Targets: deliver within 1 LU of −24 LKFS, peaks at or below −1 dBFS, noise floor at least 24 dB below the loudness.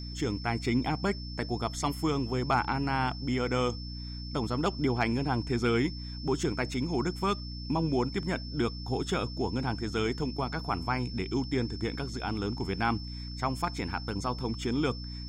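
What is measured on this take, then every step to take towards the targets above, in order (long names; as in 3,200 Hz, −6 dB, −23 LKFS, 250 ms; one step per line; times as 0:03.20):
mains hum 60 Hz; hum harmonics up to 300 Hz; level of the hum −37 dBFS; interfering tone 5,300 Hz; level of the tone −44 dBFS; integrated loudness −31.5 LKFS; sample peak −15.0 dBFS; target loudness −24.0 LKFS
→ mains-hum notches 60/120/180/240/300 Hz
notch filter 5,300 Hz, Q 30
level +7.5 dB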